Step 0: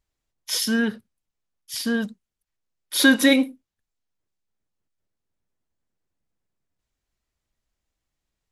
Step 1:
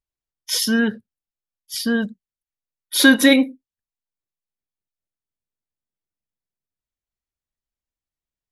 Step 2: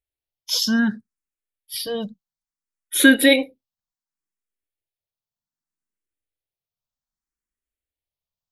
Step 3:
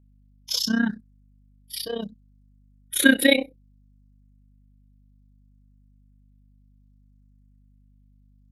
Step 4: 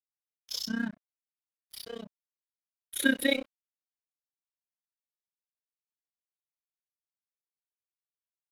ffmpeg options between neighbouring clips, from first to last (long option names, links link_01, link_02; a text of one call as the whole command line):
ffmpeg -i in.wav -af "afftdn=noise_reduction=16:noise_floor=-40,volume=3.5dB" out.wav
ffmpeg -i in.wav -filter_complex "[0:a]asplit=2[link_01][link_02];[link_02]afreqshift=0.64[link_03];[link_01][link_03]amix=inputs=2:normalize=1,volume=1.5dB" out.wav
ffmpeg -i in.wav -af "tremolo=f=31:d=0.824,aeval=exprs='val(0)+0.00158*(sin(2*PI*50*n/s)+sin(2*PI*2*50*n/s)/2+sin(2*PI*3*50*n/s)/3+sin(2*PI*4*50*n/s)/4+sin(2*PI*5*50*n/s)/5)':channel_layout=same" out.wav
ffmpeg -i in.wav -af "aeval=exprs='sgn(val(0))*max(abs(val(0))-0.0133,0)':channel_layout=same,volume=-8.5dB" out.wav